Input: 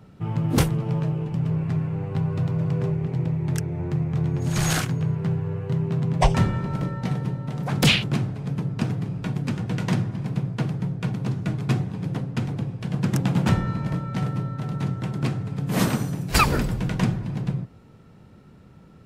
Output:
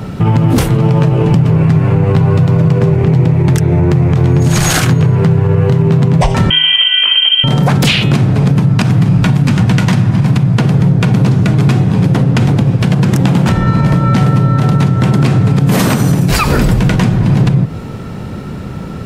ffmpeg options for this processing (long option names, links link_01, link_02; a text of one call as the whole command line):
ffmpeg -i in.wav -filter_complex "[0:a]asettb=1/sr,asplit=3[link_01][link_02][link_03];[link_01]atrim=end=6.504[link_04];[link_02]atrim=start=6.5:end=7.44,asetpts=PTS-STARTPTS,afade=type=in:duration=0.004:curve=qsin,afade=type=out:start_time=0.936:duration=0.004:curve=qsin,lowpass=frequency=2800:width_type=q:width=0.5098,lowpass=frequency=2800:width_type=q:width=0.6013,lowpass=frequency=2800:width_type=q:width=0.9,lowpass=frequency=2800:width_type=q:width=2.563,afreqshift=-3300[link_05];[link_03]atrim=start=7.436[link_06];[link_04][link_05]acrossfade=duration=0.004:curve1=hsin:curve2=qsin[link_07];[link_07][link_06]acrossfade=duration=0.004:curve1=qsin:curve2=hsin,asettb=1/sr,asplit=3[link_08][link_09][link_10];[link_08]atrim=end=8.604[link_11];[link_09]atrim=start=8.6:end=10.58,asetpts=PTS-STARTPTS,afade=type=in:duration=0.004:curve=qsin,afade=type=out:start_time=1.976:duration=0.004:curve=qsin,equalizer=frequency=430:width=1.5:gain=-6.5[link_12];[link_10]atrim=start=10.576[link_13];[link_11][link_12]acrossfade=duration=0.004:curve1=hsin:curve2=qsin[link_14];[link_14][link_13]acrossfade=duration=0.004:curve1=qsin:curve2=hsin,asettb=1/sr,asplit=3[link_15][link_16][link_17];[link_15]atrim=end=12.384[link_18];[link_16]atrim=start=12.38:end=12.95,asetpts=PTS-STARTPTS,afade=type=in:duration=0.004:curve=qsin,afade=type=out:start_time=0.566:duration=0.004:curve=qsin,aeval=exprs='sgn(val(0))*max(abs(val(0))-0.00211,0)':channel_layout=same[link_19];[link_17]atrim=start=12.946[link_20];[link_18][link_19]acrossfade=duration=0.004:curve1=hsin:curve2=qsin[link_21];[link_21][link_20]acrossfade=duration=0.004:curve1=qsin:curve2=hsin,bandreject=frequency=158:width_type=h:width=4,bandreject=frequency=316:width_type=h:width=4,bandreject=frequency=474:width_type=h:width=4,bandreject=frequency=632:width_type=h:width=4,bandreject=frequency=790:width_type=h:width=4,bandreject=frequency=948:width_type=h:width=4,bandreject=frequency=1106:width_type=h:width=4,bandreject=frequency=1264:width_type=h:width=4,bandreject=frequency=1422:width_type=h:width=4,bandreject=frequency=1580:width_type=h:width=4,bandreject=frequency=1738:width_type=h:width=4,bandreject=frequency=1896:width_type=h:width=4,bandreject=frequency=2054:width_type=h:width=4,bandreject=frequency=2212:width_type=h:width=4,bandreject=frequency=2370:width_type=h:width=4,bandreject=frequency=2528:width_type=h:width=4,bandreject=frequency=2686:width_type=h:width=4,bandreject=frequency=2844:width_type=h:width=4,bandreject=frequency=3002:width_type=h:width=4,bandreject=frequency=3160:width_type=h:width=4,bandreject=frequency=3318:width_type=h:width=4,bandreject=frequency=3476:width_type=h:width=4,bandreject=frequency=3634:width_type=h:width=4,bandreject=frequency=3792:width_type=h:width=4,bandreject=frequency=3950:width_type=h:width=4,bandreject=frequency=4108:width_type=h:width=4,acompressor=threshold=-31dB:ratio=6,alimiter=level_in=27.5dB:limit=-1dB:release=50:level=0:latency=1,volume=-1dB" out.wav